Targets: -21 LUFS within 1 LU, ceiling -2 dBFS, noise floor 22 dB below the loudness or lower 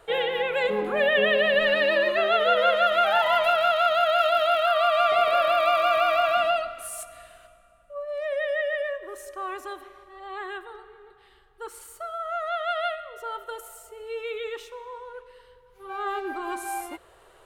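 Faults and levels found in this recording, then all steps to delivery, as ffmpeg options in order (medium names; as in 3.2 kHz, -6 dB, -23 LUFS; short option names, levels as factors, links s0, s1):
loudness -23.0 LUFS; peak level -9.0 dBFS; loudness target -21.0 LUFS
-> -af "volume=1.26"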